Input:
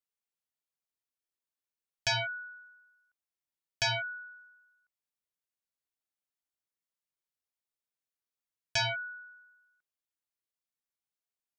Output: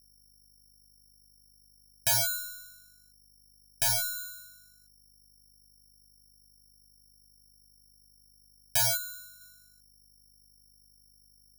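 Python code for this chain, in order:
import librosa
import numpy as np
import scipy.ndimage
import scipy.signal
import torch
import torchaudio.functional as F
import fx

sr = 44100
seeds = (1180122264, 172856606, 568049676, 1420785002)

y = fx.halfwave_gain(x, sr, db=-3.0, at=(2.36, 4.15), fade=0.02)
y = fx.peak_eq(y, sr, hz=2500.0, db=-13.0, octaves=1.2, at=(8.97, 9.41))
y = fx.add_hum(y, sr, base_hz=50, snr_db=28)
y = fx.air_absorb(y, sr, metres=420.0)
y = (np.kron(scipy.signal.resample_poly(y, 1, 8), np.eye(8)[0]) * 8)[:len(y)]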